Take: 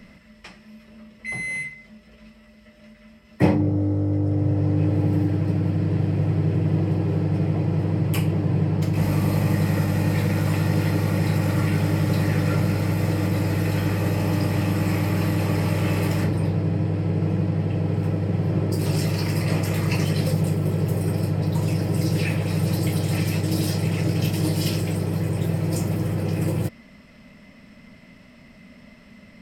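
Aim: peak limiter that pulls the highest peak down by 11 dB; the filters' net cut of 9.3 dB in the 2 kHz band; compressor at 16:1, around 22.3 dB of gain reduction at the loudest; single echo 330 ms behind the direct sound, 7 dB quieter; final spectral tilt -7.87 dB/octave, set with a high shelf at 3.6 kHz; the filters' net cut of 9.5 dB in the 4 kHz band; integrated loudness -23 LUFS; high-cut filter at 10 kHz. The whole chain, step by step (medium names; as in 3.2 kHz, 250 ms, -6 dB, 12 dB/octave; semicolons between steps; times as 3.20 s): low-pass 10 kHz; peaking EQ 2 kHz -7.5 dB; treble shelf 3.6 kHz -8 dB; peaking EQ 4 kHz -4.5 dB; compression 16:1, threshold -35 dBFS; peak limiter -35 dBFS; delay 330 ms -7 dB; trim +19.5 dB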